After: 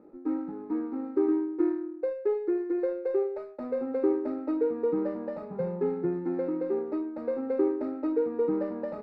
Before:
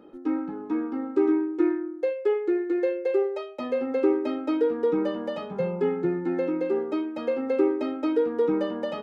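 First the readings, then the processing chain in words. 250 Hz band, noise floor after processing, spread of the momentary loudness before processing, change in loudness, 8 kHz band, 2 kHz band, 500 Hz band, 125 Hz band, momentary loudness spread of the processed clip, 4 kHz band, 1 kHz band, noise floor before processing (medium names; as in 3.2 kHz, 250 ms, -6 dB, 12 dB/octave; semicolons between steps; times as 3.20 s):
-3.5 dB, -43 dBFS, 6 LU, -3.5 dB, no reading, -10.5 dB, -3.5 dB, -3.0 dB, 6 LU, under -20 dB, -6.0 dB, -39 dBFS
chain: median filter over 25 samples; boxcar filter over 14 samples; trim -3 dB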